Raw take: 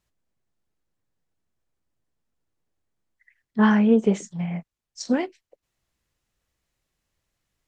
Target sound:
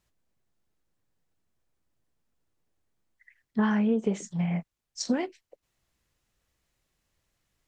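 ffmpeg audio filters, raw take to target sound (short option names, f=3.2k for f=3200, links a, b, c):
-af "acompressor=threshold=-25dB:ratio=4,volume=1.5dB"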